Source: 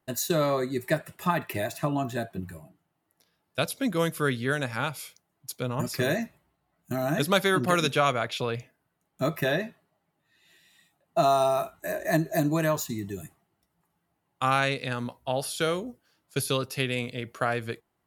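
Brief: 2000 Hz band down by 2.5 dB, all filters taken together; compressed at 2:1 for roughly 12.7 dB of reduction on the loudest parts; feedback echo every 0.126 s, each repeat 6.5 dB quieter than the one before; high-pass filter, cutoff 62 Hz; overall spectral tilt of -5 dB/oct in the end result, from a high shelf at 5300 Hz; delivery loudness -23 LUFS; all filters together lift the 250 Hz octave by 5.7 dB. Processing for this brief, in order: HPF 62 Hz; bell 250 Hz +7.5 dB; bell 2000 Hz -4 dB; high shelf 5300 Hz +3.5 dB; compressor 2:1, threshold -41 dBFS; feedback echo 0.126 s, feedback 47%, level -6.5 dB; gain +13.5 dB

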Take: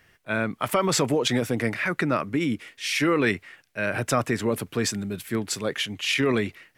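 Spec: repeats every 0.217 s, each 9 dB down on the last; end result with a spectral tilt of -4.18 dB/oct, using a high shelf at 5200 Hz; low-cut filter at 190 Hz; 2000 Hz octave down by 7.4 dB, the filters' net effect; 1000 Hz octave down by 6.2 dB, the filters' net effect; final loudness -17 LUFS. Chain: HPF 190 Hz; bell 1000 Hz -5.5 dB; bell 2000 Hz -7 dB; high shelf 5200 Hz -5 dB; feedback echo 0.217 s, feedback 35%, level -9 dB; gain +11 dB

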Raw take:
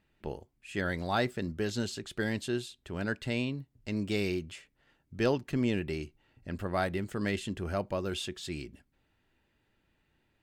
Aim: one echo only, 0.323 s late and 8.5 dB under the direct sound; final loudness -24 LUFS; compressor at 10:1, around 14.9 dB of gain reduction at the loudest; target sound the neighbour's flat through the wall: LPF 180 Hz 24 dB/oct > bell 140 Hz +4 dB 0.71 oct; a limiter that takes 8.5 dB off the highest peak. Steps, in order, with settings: compressor 10:1, threshold -39 dBFS; limiter -36.5 dBFS; LPF 180 Hz 24 dB/oct; bell 140 Hz +4 dB 0.71 oct; echo 0.323 s -8.5 dB; gain +28 dB

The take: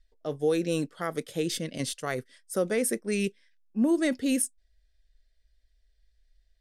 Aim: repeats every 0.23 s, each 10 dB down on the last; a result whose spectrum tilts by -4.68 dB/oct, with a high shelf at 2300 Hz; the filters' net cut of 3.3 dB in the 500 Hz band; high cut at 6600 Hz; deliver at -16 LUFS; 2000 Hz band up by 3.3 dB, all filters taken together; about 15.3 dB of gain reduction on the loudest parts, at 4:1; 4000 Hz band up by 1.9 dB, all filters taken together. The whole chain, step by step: LPF 6600 Hz; bell 500 Hz -4 dB; bell 2000 Hz +5.5 dB; high shelf 2300 Hz -6 dB; bell 4000 Hz +6.5 dB; compressor 4:1, threshold -41 dBFS; feedback echo 0.23 s, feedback 32%, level -10 dB; gain +27 dB

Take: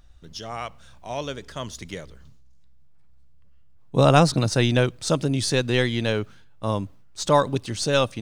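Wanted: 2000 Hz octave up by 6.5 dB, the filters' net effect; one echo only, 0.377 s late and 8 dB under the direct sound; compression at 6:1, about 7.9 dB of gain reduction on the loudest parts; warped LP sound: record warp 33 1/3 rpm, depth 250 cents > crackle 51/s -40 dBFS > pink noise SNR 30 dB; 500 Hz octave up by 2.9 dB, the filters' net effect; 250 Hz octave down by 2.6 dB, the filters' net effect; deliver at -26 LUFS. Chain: bell 250 Hz -5 dB; bell 500 Hz +4 dB; bell 2000 Hz +8.5 dB; compressor 6:1, threshold -18 dBFS; echo 0.377 s -8 dB; record warp 33 1/3 rpm, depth 250 cents; crackle 51/s -40 dBFS; pink noise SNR 30 dB; gain -0.5 dB

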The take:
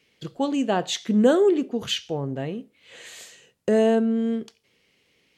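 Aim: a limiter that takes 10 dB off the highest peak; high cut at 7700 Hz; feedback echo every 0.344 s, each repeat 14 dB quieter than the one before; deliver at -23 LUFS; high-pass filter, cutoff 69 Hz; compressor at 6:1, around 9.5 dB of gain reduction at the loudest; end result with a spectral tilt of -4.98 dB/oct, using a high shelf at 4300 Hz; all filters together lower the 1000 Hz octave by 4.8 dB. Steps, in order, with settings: HPF 69 Hz; LPF 7700 Hz; bell 1000 Hz -8 dB; high shelf 4300 Hz +4.5 dB; compressor 6:1, threshold -25 dBFS; limiter -24 dBFS; feedback echo 0.344 s, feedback 20%, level -14 dB; gain +10 dB

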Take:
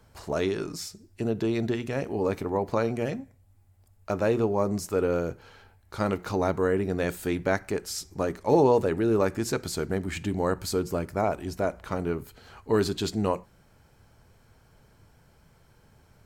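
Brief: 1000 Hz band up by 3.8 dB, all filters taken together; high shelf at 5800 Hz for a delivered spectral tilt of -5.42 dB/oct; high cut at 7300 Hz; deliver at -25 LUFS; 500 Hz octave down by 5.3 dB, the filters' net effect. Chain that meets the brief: LPF 7300 Hz; bell 500 Hz -8.5 dB; bell 1000 Hz +7.5 dB; high shelf 5800 Hz +3.5 dB; gain +4.5 dB

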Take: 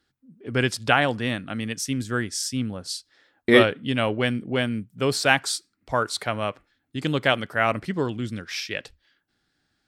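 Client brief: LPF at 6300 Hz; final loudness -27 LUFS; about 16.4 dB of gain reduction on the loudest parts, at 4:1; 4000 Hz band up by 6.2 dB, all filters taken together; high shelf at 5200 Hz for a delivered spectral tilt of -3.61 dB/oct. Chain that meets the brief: LPF 6300 Hz; bell 4000 Hz +7 dB; high shelf 5200 Hz +5 dB; compressor 4:1, threshold -29 dBFS; gain +5 dB

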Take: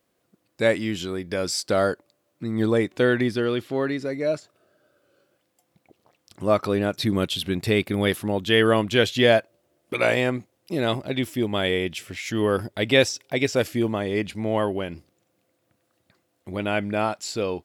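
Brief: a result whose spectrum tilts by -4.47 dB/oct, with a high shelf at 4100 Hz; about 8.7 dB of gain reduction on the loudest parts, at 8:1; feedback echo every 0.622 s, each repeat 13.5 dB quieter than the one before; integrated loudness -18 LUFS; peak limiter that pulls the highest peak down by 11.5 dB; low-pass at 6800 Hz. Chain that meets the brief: LPF 6800 Hz; high shelf 4100 Hz +6 dB; compressor 8:1, threshold -21 dBFS; limiter -22.5 dBFS; feedback echo 0.622 s, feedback 21%, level -13.5 dB; gain +14.5 dB

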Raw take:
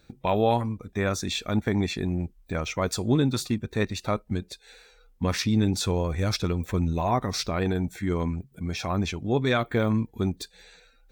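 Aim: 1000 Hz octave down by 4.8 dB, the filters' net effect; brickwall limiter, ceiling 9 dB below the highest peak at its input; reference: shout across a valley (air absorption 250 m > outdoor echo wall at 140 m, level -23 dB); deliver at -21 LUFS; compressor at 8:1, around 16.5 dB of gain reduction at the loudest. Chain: bell 1000 Hz -5 dB; compressor 8:1, threshold -36 dBFS; limiter -33 dBFS; air absorption 250 m; outdoor echo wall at 140 m, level -23 dB; gain +23.5 dB

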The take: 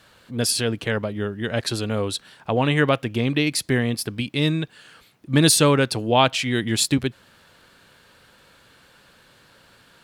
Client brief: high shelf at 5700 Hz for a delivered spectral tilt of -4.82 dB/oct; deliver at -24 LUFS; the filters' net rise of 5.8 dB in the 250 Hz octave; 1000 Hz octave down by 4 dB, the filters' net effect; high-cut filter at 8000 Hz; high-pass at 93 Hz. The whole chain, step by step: HPF 93 Hz; LPF 8000 Hz; bell 250 Hz +7.5 dB; bell 1000 Hz -6 dB; high shelf 5700 Hz +3.5 dB; gain -4.5 dB

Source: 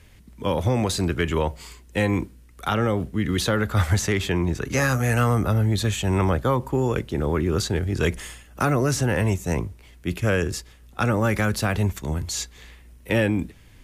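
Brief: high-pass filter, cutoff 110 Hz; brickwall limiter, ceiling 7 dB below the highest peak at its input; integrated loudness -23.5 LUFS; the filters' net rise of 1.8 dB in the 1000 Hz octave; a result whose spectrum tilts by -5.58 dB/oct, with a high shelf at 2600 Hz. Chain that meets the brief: HPF 110 Hz; bell 1000 Hz +3 dB; high shelf 2600 Hz -3.5 dB; gain +3 dB; limiter -12.5 dBFS

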